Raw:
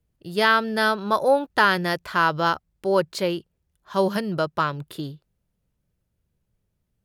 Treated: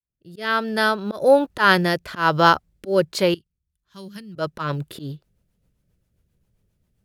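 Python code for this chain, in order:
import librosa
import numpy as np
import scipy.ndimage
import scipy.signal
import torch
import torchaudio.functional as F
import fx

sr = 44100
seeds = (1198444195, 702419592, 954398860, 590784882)

y = fx.fade_in_head(x, sr, length_s=1.35)
y = fx.tone_stack(y, sr, knobs='6-0-2', at=(3.34, 4.36))
y = fx.auto_swell(y, sr, attack_ms=134.0)
y = fx.rotary_switch(y, sr, hz=1.1, then_hz=7.5, switch_at_s=3.36)
y = fx.quant_float(y, sr, bits=6)
y = F.gain(torch.from_numpy(y), 7.5).numpy()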